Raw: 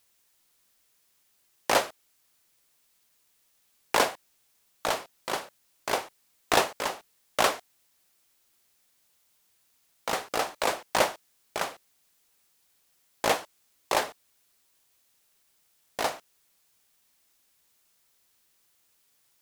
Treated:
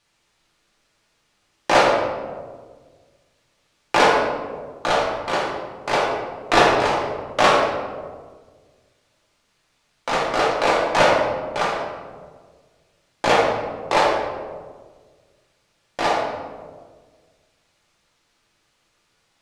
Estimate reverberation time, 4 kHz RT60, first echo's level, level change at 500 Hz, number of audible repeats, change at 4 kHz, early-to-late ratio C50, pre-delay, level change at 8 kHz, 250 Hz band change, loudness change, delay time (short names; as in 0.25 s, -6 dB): 1.6 s, 0.80 s, none, +11.5 dB, none, +6.5 dB, 0.5 dB, 3 ms, 0.0 dB, +12.0 dB, +9.0 dB, none